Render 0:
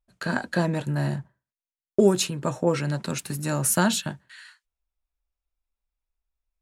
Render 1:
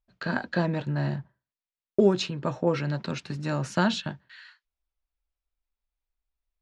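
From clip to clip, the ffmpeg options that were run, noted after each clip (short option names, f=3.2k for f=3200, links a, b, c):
-af "lowpass=f=5k:w=0.5412,lowpass=f=5k:w=1.3066,volume=-2dB"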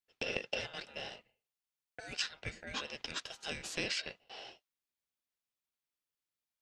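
-filter_complex "[0:a]acrossover=split=1400|5100[a][b][c];[a]acompressor=threshold=-34dB:ratio=4[d];[b]acompressor=threshold=-35dB:ratio=4[e];[c]acompressor=threshold=-46dB:ratio=4[f];[d][e][f]amix=inputs=3:normalize=0,highpass=1.1k,aeval=exprs='val(0)*sin(2*PI*1100*n/s)':c=same,volume=3.5dB"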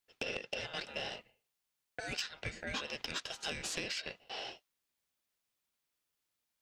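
-af "acompressor=threshold=-40dB:ratio=12,asoftclip=type=tanh:threshold=-30.5dB,volume=6.5dB"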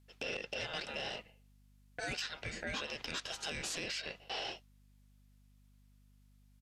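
-af "alimiter=level_in=10.5dB:limit=-24dB:level=0:latency=1:release=51,volume=-10.5dB,aeval=exprs='val(0)+0.000355*(sin(2*PI*50*n/s)+sin(2*PI*2*50*n/s)/2+sin(2*PI*3*50*n/s)/3+sin(2*PI*4*50*n/s)/4+sin(2*PI*5*50*n/s)/5)':c=same,aresample=32000,aresample=44100,volume=5.5dB"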